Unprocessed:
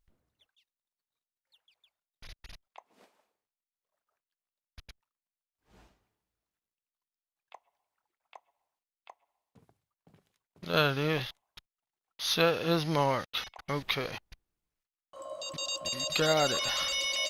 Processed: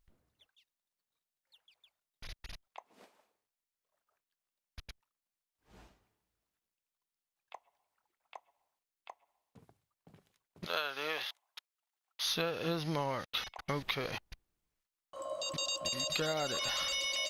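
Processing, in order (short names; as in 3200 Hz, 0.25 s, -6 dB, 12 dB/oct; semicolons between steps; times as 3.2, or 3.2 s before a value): 10.66–12.26 HPF 670 Hz 12 dB/oct; compressor 6:1, threshold -33 dBFS, peak gain reduction 12 dB; gain +1.5 dB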